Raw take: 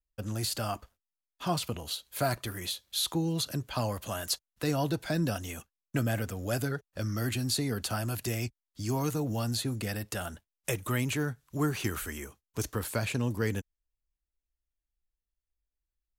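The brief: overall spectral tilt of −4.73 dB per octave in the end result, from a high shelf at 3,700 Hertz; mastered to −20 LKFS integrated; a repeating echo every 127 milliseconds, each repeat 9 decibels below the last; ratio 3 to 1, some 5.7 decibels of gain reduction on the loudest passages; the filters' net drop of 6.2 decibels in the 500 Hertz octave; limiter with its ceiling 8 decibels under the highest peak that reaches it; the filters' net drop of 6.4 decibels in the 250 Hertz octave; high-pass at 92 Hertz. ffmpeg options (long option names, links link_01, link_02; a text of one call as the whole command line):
ffmpeg -i in.wav -af "highpass=92,equalizer=frequency=250:width_type=o:gain=-7,equalizer=frequency=500:width_type=o:gain=-6,highshelf=frequency=3700:gain=-6.5,acompressor=threshold=-37dB:ratio=3,alimiter=level_in=7dB:limit=-24dB:level=0:latency=1,volume=-7dB,aecho=1:1:127|254|381|508:0.355|0.124|0.0435|0.0152,volume=21.5dB" out.wav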